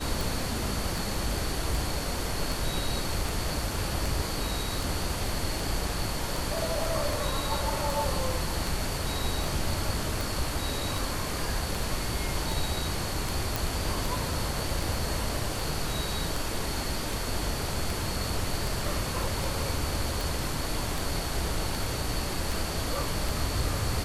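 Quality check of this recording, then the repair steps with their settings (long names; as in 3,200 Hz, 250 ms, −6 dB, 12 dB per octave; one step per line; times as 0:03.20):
scratch tick 78 rpm
0:13.56: click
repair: click removal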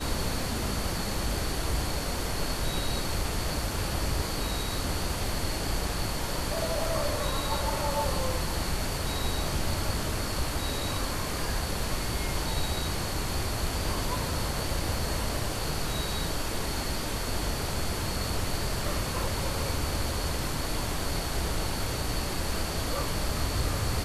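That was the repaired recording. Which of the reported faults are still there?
none of them is left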